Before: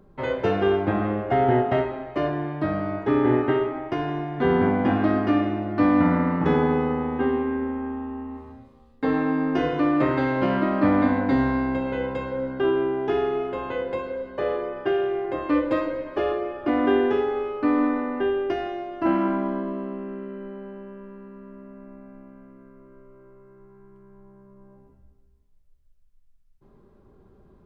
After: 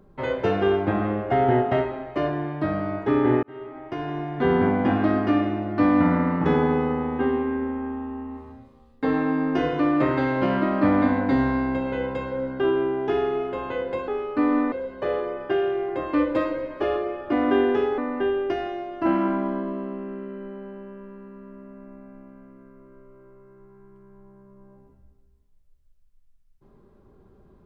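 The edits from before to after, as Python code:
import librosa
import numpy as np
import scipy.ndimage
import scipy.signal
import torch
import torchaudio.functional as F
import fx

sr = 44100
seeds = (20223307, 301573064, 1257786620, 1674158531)

y = fx.edit(x, sr, fx.fade_in_span(start_s=3.43, length_s=0.86),
    fx.move(start_s=17.34, length_s=0.64, to_s=14.08), tone=tone)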